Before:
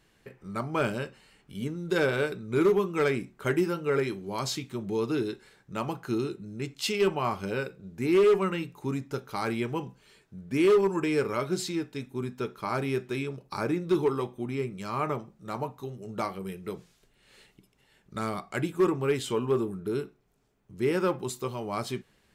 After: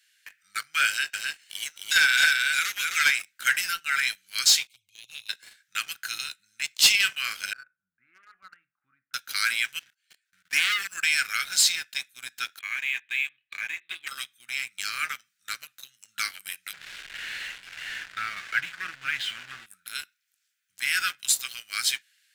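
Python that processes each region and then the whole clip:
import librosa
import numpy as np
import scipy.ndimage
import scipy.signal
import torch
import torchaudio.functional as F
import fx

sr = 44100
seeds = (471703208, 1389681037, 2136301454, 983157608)

y = fx.chain(x, sr, fx.highpass(hz=540.0, slope=12),
    fx.peak_eq(hz=6200.0, db=4.0, octaves=0.61),
    fx.echo_single(ms=263, db=-3.5), at=(0.87, 3.22))
y = fx.chain(y, sr, fx.high_shelf(hz=2200.0, db=-10.0),
    fx.env_flanger(rest_ms=7.1, full_db=-28.0),
    fx.brickwall_bandstop(low_hz=170.0, high_hz=2100.0), at=(4.67, 5.29))
y = fx.chain(y, sr, fx.lowpass(hz=1000.0, slope=24),
    fx.low_shelf(hz=320.0, db=-9.0), at=(7.53, 9.14))
y = fx.chain(y, sr, fx.peak_eq(hz=600.0, db=9.0, octaves=2.8),
    fx.leveller(passes=2),
    fx.level_steps(step_db=19), at=(9.79, 10.83))
y = fx.chain(y, sr, fx.brickwall_lowpass(high_hz=4700.0),
    fx.fixed_phaser(hz=930.0, stages=8), at=(12.59, 14.07))
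y = fx.chain(y, sr, fx.zero_step(step_db=-33.5),
    fx.lowpass(hz=2500.0, slope=12),
    fx.tilt_eq(slope=-2.5), at=(16.73, 19.66))
y = scipy.signal.sosfilt(scipy.signal.ellip(4, 1.0, 40, 1500.0, 'highpass', fs=sr, output='sos'), y)
y = fx.high_shelf(y, sr, hz=2900.0, db=7.5)
y = fx.leveller(y, sr, passes=2)
y = y * librosa.db_to_amplitude(4.0)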